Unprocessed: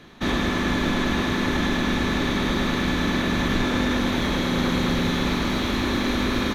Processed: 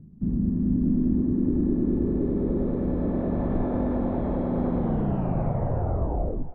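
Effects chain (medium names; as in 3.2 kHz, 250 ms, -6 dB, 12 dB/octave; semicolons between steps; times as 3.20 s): tape stop on the ending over 1.80 s; bass shelf 270 Hz +7 dB; upward compressor, threshold -38 dBFS; low-pass sweep 180 Hz -> 680 Hz, 0.13–3.54 s; on a send: thinning echo 345 ms, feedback 47%, high-pass 530 Hz, level -14.5 dB; on the sum: trim -7.5 dB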